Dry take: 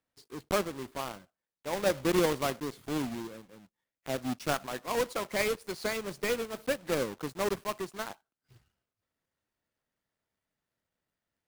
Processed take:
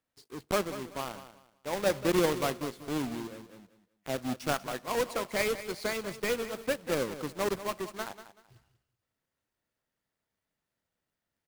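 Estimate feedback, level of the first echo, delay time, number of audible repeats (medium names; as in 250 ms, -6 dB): 25%, -13.0 dB, 190 ms, 2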